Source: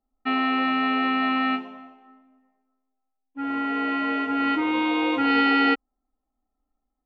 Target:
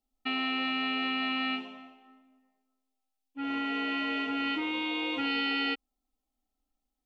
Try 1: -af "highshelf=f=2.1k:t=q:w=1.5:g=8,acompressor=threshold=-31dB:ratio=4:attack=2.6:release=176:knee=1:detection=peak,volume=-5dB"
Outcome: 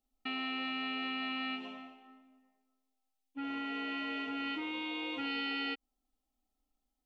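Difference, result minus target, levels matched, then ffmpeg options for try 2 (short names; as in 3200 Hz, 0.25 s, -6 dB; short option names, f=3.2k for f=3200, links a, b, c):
compressor: peak gain reduction +6.5 dB
-af "highshelf=f=2.1k:t=q:w=1.5:g=8,acompressor=threshold=-22.5dB:ratio=4:attack=2.6:release=176:knee=1:detection=peak,volume=-5dB"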